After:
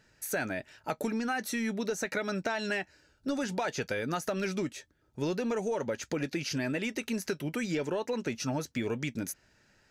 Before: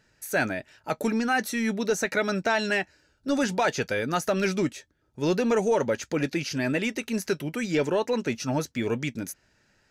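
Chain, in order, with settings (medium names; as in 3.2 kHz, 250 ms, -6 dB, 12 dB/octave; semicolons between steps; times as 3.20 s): compression, threshold -29 dBFS, peak gain reduction 9.5 dB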